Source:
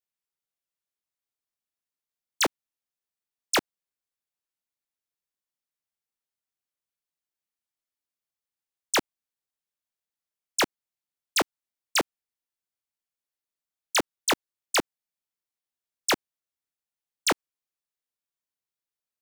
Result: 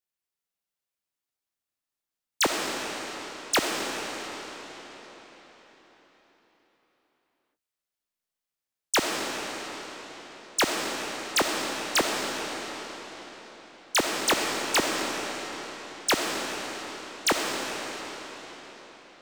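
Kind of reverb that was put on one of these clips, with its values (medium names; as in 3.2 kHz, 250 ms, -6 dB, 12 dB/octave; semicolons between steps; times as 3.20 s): algorithmic reverb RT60 4.8 s, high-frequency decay 0.9×, pre-delay 15 ms, DRR 0 dB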